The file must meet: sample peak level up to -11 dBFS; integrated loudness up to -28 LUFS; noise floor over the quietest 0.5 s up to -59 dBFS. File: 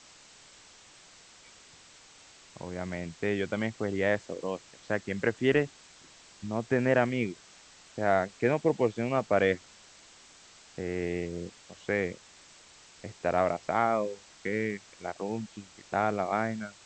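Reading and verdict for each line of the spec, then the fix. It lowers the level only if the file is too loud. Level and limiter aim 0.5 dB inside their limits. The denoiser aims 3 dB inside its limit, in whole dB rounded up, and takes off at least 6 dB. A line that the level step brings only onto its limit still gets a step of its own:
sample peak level -10.0 dBFS: fail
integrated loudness -30.5 LUFS: OK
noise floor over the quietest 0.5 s -55 dBFS: fail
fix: denoiser 7 dB, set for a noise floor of -55 dBFS; limiter -11.5 dBFS

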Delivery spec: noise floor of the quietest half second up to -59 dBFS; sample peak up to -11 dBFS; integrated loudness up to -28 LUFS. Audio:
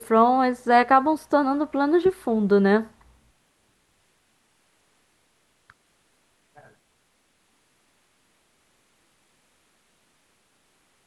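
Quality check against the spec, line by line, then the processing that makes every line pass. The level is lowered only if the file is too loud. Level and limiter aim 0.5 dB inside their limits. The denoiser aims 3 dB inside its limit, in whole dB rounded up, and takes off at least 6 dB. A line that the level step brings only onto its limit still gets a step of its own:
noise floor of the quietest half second -67 dBFS: OK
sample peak -4.5 dBFS: fail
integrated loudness -20.5 LUFS: fail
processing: gain -8 dB

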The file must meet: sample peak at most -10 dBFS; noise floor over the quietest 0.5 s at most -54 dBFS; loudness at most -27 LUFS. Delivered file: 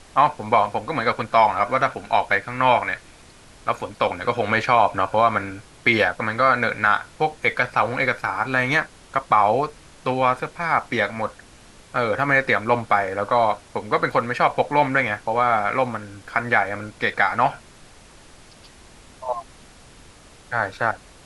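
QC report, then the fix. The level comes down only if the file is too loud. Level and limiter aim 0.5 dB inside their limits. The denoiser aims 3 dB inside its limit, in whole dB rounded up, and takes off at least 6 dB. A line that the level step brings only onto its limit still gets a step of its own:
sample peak -4.5 dBFS: fail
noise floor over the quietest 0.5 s -47 dBFS: fail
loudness -21.0 LUFS: fail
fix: denoiser 6 dB, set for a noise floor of -47 dBFS; gain -6.5 dB

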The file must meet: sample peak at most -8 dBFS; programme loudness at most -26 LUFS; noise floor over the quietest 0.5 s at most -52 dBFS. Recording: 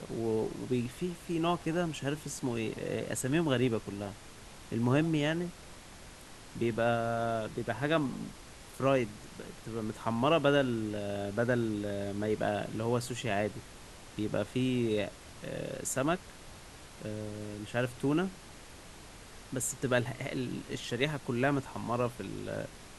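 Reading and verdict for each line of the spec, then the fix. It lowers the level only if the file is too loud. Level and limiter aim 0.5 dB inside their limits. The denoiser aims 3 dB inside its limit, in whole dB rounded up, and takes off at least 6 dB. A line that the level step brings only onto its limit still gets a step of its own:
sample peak -14.0 dBFS: OK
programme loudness -33.0 LUFS: OK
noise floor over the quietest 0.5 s -50 dBFS: fail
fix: denoiser 6 dB, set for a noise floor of -50 dBFS

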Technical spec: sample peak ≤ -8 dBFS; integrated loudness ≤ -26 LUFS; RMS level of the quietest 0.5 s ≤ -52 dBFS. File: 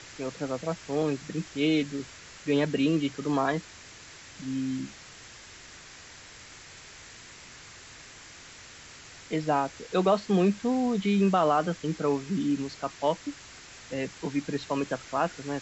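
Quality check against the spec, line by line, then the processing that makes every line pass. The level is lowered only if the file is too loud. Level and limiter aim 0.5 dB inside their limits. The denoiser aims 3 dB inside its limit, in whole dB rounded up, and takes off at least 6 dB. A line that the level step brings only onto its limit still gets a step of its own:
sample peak -11.5 dBFS: OK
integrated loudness -28.5 LUFS: OK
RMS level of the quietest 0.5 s -48 dBFS: fail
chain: denoiser 7 dB, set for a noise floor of -48 dBFS

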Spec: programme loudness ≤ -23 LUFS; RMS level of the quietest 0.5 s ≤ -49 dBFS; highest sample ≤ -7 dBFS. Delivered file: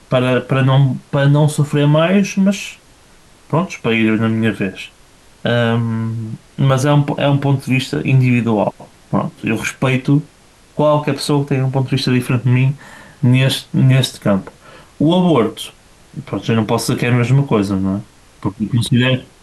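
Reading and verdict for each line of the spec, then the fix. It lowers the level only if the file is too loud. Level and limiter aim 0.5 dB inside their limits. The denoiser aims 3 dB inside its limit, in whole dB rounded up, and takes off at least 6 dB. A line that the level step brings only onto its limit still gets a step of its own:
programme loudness -16.0 LUFS: fail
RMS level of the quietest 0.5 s -47 dBFS: fail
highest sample -4.0 dBFS: fail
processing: gain -7.5 dB

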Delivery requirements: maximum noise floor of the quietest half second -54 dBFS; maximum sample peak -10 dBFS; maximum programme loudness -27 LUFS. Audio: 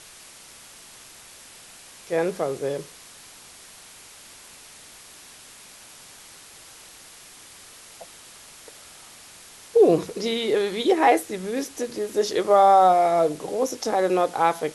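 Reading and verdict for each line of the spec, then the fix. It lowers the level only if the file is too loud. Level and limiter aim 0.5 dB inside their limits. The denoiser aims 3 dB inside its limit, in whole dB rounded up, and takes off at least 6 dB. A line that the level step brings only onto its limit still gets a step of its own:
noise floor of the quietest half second -47 dBFS: fail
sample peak -5.5 dBFS: fail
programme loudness -21.5 LUFS: fail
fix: denoiser 6 dB, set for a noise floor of -47 dBFS; gain -6 dB

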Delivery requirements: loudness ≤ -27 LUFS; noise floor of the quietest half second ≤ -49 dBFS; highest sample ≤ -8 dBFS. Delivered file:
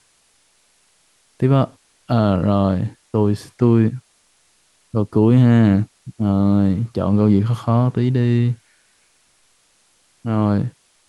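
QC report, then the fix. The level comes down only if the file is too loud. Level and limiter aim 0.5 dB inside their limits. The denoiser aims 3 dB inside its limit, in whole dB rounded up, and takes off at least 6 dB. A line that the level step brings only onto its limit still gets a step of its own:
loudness -18.0 LUFS: fail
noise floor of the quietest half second -59 dBFS: OK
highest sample -4.5 dBFS: fail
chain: gain -9.5 dB

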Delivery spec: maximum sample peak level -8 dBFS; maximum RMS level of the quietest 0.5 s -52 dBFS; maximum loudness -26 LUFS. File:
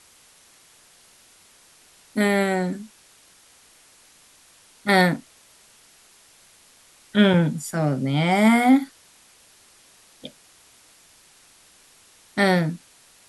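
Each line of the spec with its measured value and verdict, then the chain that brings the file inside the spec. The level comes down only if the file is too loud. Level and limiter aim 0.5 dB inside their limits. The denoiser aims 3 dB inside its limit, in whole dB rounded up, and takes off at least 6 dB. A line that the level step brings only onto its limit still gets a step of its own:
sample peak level -3.5 dBFS: fail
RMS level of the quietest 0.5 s -54 dBFS: OK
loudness -21.0 LUFS: fail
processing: gain -5.5 dB

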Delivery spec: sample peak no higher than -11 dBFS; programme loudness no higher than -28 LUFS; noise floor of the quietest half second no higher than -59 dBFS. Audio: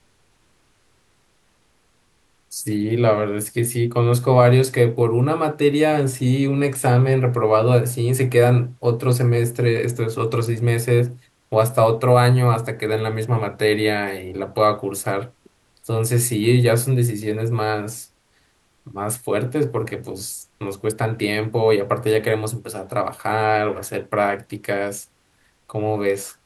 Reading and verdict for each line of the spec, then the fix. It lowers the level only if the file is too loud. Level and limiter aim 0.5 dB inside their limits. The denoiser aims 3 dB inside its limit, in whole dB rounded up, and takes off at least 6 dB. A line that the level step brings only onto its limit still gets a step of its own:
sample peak -3.0 dBFS: fail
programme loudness -20.0 LUFS: fail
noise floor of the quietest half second -61 dBFS: OK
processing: gain -8.5 dB

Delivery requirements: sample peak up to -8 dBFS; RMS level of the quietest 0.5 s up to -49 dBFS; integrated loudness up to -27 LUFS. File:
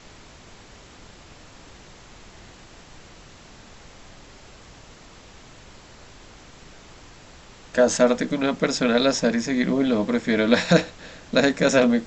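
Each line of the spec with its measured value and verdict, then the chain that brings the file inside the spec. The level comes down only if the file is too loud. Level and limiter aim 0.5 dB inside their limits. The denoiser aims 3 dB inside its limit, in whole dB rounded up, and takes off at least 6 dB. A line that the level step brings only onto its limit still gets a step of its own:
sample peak -4.5 dBFS: fail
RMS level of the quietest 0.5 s -46 dBFS: fail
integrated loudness -21.0 LUFS: fail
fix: gain -6.5 dB

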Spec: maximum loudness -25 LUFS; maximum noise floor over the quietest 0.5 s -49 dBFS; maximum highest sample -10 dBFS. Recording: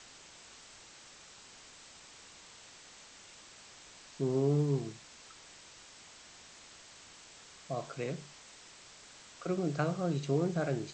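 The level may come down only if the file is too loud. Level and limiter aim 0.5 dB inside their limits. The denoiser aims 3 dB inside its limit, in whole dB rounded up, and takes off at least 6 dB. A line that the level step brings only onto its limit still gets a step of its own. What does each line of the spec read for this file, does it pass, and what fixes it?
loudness -34.0 LUFS: OK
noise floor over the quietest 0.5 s -55 dBFS: OK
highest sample -17.5 dBFS: OK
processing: none

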